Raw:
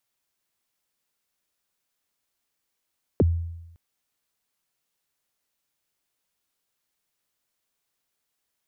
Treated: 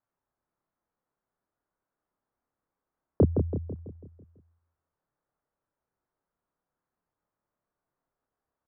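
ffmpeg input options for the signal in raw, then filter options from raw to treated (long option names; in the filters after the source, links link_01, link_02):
-f lavfi -i "aevalsrc='0.211*pow(10,-3*t/0.94)*sin(2*PI*(560*0.029/log(84/560)*(exp(log(84/560)*min(t,0.029)/0.029)-1)+84*max(t-0.029,0)))':duration=0.56:sample_rate=44100"
-filter_complex "[0:a]lowpass=frequency=1400:width=0.5412,lowpass=frequency=1400:width=1.3066,asplit=2[link_01][link_02];[link_02]adelay=29,volume=-3.5dB[link_03];[link_01][link_03]amix=inputs=2:normalize=0,asplit=2[link_04][link_05];[link_05]adelay=165,lowpass=frequency=1100:poles=1,volume=-5dB,asplit=2[link_06][link_07];[link_07]adelay=165,lowpass=frequency=1100:poles=1,volume=0.53,asplit=2[link_08][link_09];[link_09]adelay=165,lowpass=frequency=1100:poles=1,volume=0.53,asplit=2[link_10][link_11];[link_11]adelay=165,lowpass=frequency=1100:poles=1,volume=0.53,asplit=2[link_12][link_13];[link_13]adelay=165,lowpass=frequency=1100:poles=1,volume=0.53,asplit=2[link_14][link_15];[link_15]adelay=165,lowpass=frequency=1100:poles=1,volume=0.53,asplit=2[link_16][link_17];[link_17]adelay=165,lowpass=frequency=1100:poles=1,volume=0.53[link_18];[link_06][link_08][link_10][link_12][link_14][link_16][link_18]amix=inputs=7:normalize=0[link_19];[link_04][link_19]amix=inputs=2:normalize=0"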